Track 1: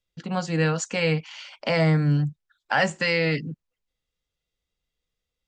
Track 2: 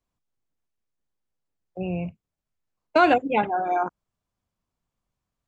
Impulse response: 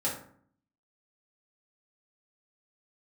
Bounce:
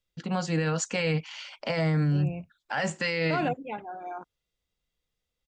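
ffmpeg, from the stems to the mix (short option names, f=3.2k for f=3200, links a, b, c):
-filter_complex "[0:a]volume=-0.5dB,asplit=2[a][b];[1:a]adelay=350,volume=-7dB[c];[b]apad=whole_len=256769[d];[c][d]sidechaingate=range=-7dB:threshold=-42dB:ratio=16:detection=peak[e];[a][e]amix=inputs=2:normalize=0,alimiter=limit=-18.5dB:level=0:latency=1:release=27"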